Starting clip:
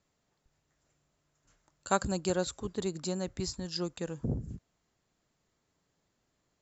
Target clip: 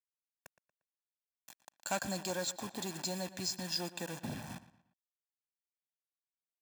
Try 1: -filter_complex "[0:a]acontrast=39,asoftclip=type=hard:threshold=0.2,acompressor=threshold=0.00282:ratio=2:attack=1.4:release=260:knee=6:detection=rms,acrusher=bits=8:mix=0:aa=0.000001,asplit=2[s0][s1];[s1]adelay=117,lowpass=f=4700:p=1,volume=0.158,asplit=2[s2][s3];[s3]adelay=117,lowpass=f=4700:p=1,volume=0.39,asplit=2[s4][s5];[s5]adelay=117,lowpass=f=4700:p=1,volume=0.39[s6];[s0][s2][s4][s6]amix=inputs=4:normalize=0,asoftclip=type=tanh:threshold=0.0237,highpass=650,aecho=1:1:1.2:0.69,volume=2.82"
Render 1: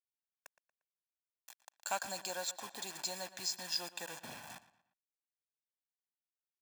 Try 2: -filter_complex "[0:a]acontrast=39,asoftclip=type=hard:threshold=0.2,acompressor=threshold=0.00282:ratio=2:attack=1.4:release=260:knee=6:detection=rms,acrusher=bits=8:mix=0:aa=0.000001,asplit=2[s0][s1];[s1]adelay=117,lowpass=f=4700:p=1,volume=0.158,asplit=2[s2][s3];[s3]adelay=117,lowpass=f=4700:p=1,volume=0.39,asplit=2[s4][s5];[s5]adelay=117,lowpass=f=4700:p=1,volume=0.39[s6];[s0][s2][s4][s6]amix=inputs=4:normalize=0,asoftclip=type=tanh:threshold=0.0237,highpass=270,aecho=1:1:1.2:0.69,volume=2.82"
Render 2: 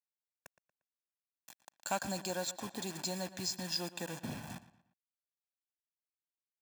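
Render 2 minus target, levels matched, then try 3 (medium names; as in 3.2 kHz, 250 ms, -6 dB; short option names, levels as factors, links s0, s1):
hard clipper: distortion -8 dB
-filter_complex "[0:a]acontrast=39,asoftclip=type=hard:threshold=0.0944,acompressor=threshold=0.00282:ratio=2:attack=1.4:release=260:knee=6:detection=rms,acrusher=bits=8:mix=0:aa=0.000001,asplit=2[s0][s1];[s1]adelay=117,lowpass=f=4700:p=1,volume=0.158,asplit=2[s2][s3];[s3]adelay=117,lowpass=f=4700:p=1,volume=0.39,asplit=2[s4][s5];[s5]adelay=117,lowpass=f=4700:p=1,volume=0.39[s6];[s0][s2][s4][s6]amix=inputs=4:normalize=0,asoftclip=type=tanh:threshold=0.0237,highpass=270,aecho=1:1:1.2:0.69,volume=2.82"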